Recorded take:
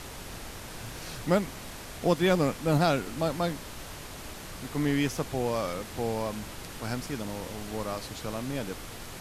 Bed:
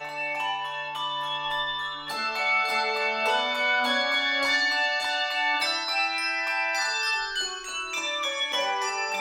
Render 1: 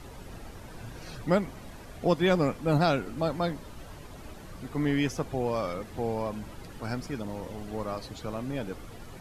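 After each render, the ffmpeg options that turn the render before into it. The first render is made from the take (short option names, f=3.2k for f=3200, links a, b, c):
-af "afftdn=nr=11:nf=-42"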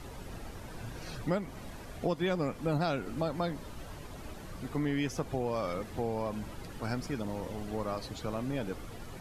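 -af "acompressor=threshold=-29dB:ratio=3"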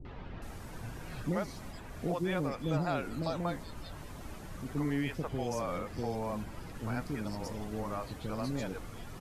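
-filter_complex "[0:a]acrossover=split=470|3700[a][b][c];[b]adelay=50[d];[c]adelay=420[e];[a][d][e]amix=inputs=3:normalize=0"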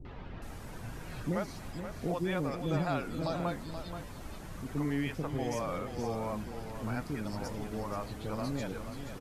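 -af "aecho=1:1:478:0.355"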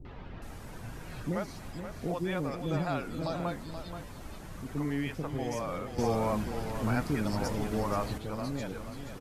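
-filter_complex "[0:a]asettb=1/sr,asplit=3[a][b][c];[a]atrim=end=5.984[d];[b]atrim=start=5.98:end=8.18,asetpts=PTS-STARTPTS,afade=t=in:d=0.004:c=qsin,afade=t=out:st=2.196:d=0.004:c=qsin,acontrast=56[e];[c]atrim=start=8.176[f];[d][e]acrossfade=d=0.004:c1=hsin:c2=qsin[g];[g][f]acrossfade=d=0.004:c1=qsin:c2=hsin"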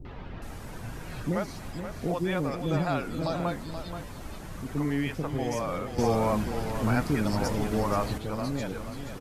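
-af "volume=4dB"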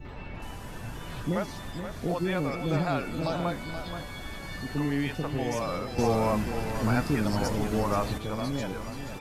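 -filter_complex "[1:a]volume=-19.5dB[a];[0:a][a]amix=inputs=2:normalize=0"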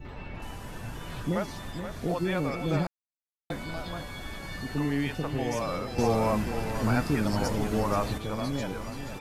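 -filter_complex "[0:a]asplit=3[a][b][c];[a]atrim=end=2.87,asetpts=PTS-STARTPTS,afade=t=out:st=2.866:d=0.004:c=hsin[d];[b]atrim=start=2.87:end=3.5,asetpts=PTS-STARTPTS,volume=0[e];[c]atrim=start=3.5,asetpts=PTS-STARTPTS,afade=t=in:d=0.004:c=hsin[f];[d][e][f]concat=n=3:v=0:a=1"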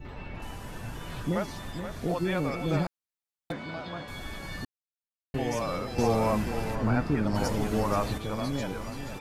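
-filter_complex "[0:a]asettb=1/sr,asplit=3[a][b][c];[a]atrim=end=3.524[d];[b]atrim=start=3.52:end=4.08,asetpts=PTS-STARTPTS,afade=t=in:d=0.004:c=qsin,afade=t=out:st=0.556:d=0.004:c=qsin,highpass=130,lowpass=4k[e];[c]atrim=start=4.076[f];[d][e]acrossfade=d=0.004:c1=hsin:c2=qsin[g];[g][f]acrossfade=d=0.004:c1=qsin:c2=hsin,asplit=3[h][i][j];[h]afade=t=out:st=6.74:d=0.02[k];[i]lowpass=f=1.8k:p=1,afade=t=in:st=6.74:d=0.02,afade=t=out:st=7.34:d=0.02[l];[j]afade=t=in:st=7.34:d=0.02[m];[k][l][m]amix=inputs=3:normalize=0,asplit=3[n][o][p];[n]atrim=end=4.65,asetpts=PTS-STARTPTS,afade=t=out:st=4.646:d=0.004:c=hsin[q];[o]atrim=start=4.65:end=5.34,asetpts=PTS-STARTPTS,volume=0[r];[p]atrim=start=5.34,asetpts=PTS-STARTPTS,afade=t=in:d=0.004:c=hsin[s];[q][r][s]concat=n=3:v=0:a=1"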